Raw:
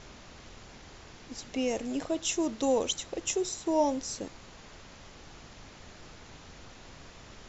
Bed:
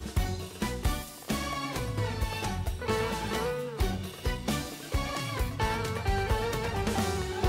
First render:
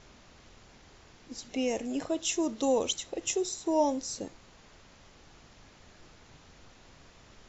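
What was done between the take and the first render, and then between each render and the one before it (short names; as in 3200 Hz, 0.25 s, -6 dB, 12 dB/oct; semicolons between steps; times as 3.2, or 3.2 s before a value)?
noise print and reduce 6 dB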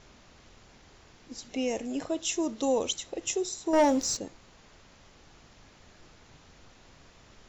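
3.73–4.17 sample leveller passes 2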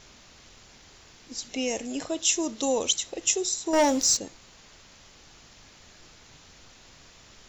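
high shelf 2400 Hz +10 dB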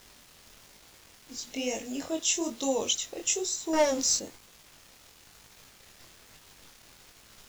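requantised 8-bit, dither none; chorus 1.1 Hz, delay 18.5 ms, depth 7.6 ms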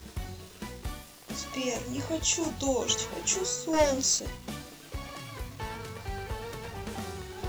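add bed -8.5 dB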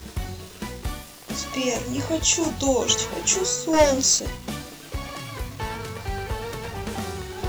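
gain +7 dB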